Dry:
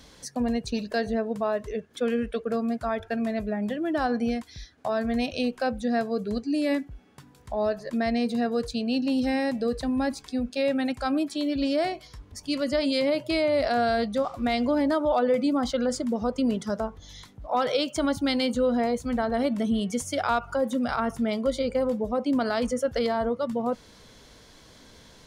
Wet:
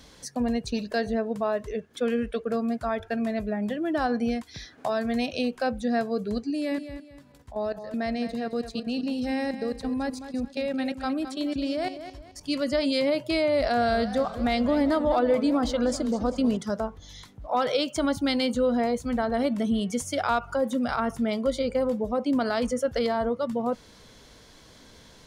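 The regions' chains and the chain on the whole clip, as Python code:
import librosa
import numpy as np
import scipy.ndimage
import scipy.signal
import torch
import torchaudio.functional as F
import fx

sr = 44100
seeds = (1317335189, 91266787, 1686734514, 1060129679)

y = fx.chain(x, sr, fx.low_shelf(hz=66.0, db=-10.5),
    fx.band_squash(depth_pct=40), at=(4.54, 5.54))
y = fx.chain(y, sr, fx.level_steps(step_db=14),
    fx.echo_feedback(ms=215, feedback_pct=31, wet_db=-11), at=(6.5, 12.41))
y = fx.chain(y, sr, fx.low_shelf(hz=61.0, db=10.5),
    fx.echo_warbled(ms=197, feedback_pct=59, rate_hz=2.8, cents=207, wet_db=-14.0), at=(13.61, 16.57))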